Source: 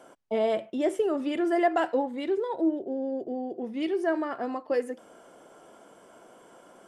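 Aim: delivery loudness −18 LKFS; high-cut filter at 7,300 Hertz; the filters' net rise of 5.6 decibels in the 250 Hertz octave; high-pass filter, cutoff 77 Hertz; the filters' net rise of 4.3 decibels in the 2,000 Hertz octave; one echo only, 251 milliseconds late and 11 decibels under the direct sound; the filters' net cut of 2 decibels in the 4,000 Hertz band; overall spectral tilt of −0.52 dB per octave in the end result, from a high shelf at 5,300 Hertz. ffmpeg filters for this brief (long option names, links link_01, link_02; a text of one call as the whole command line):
ffmpeg -i in.wav -af "highpass=77,lowpass=7300,equalizer=frequency=250:width_type=o:gain=7.5,equalizer=frequency=2000:width_type=o:gain=6.5,equalizer=frequency=4000:width_type=o:gain=-8.5,highshelf=frequency=5300:gain=3,aecho=1:1:251:0.282,volume=7dB" out.wav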